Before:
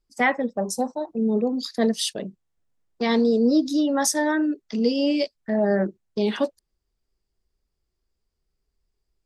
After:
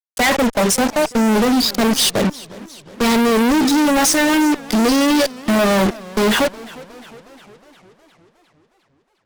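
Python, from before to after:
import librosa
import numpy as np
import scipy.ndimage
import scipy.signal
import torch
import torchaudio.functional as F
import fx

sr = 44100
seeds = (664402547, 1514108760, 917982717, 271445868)

y = fx.fuzz(x, sr, gain_db=46.0, gate_db=-38.0)
y = fx.echo_warbled(y, sr, ms=359, feedback_pct=60, rate_hz=2.8, cents=164, wet_db=-20.0)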